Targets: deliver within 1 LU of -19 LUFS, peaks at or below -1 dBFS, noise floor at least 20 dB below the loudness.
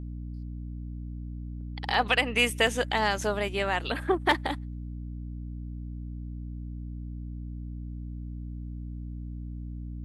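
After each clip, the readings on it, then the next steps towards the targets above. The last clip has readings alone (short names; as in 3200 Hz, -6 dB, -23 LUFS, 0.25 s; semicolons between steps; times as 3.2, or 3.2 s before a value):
dropouts 4; longest dropout 2.6 ms; hum 60 Hz; harmonics up to 300 Hz; hum level -34 dBFS; loudness -31.0 LUFS; peak -10.0 dBFS; loudness target -19.0 LUFS
-> interpolate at 1.94/2.67/3.21/4.31, 2.6 ms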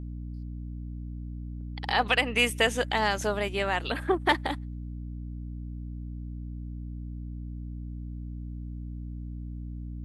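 dropouts 0; hum 60 Hz; harmonics up to 300 Hz; hum level -34 dBFS
-> de-hum 60 Hz, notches 5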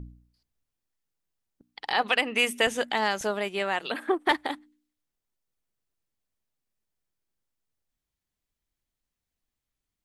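hum none; loudness -26.5 LUFS; peak -9.5 dBFS; loudness target -19.0 LUFS
-> gain +7.5 dB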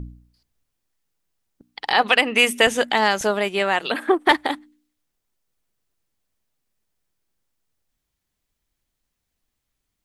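loudness -19.0 LUFS; peak -2.0 dBFS; noise floor -79 dBFS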